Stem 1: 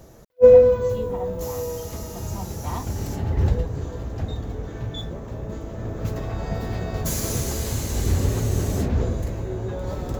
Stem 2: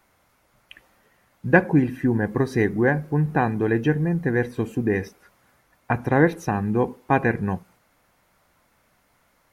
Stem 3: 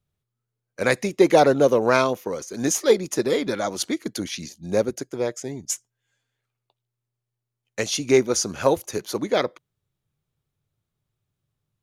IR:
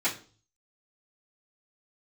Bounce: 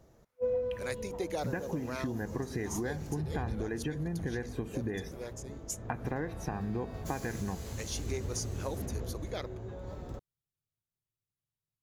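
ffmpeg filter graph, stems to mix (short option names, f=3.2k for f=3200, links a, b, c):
-filter_complex "[0:a]highshelf=f=7.4k:g=-8,volume=-13.5dB[a];[1:a]agate=range=-19dB:threshold=-55dB:ratio=16:detection=peak,acompressor=threshold=-28dB:ratio=6,volume=-1.5dB,asplit=2[b][c];[2:a]aemphasis=mode=production:type=cd,volume=-17dB[d];[c]apad=whole_len=521645[e];[d][e]sidechaincompress=threshold=-32dB:ratio=8:attack=16:release=654[f];[a][b][f]amix=inputs=3:normalize=0,acompressor=threshold=-32dB:ratio=2.5"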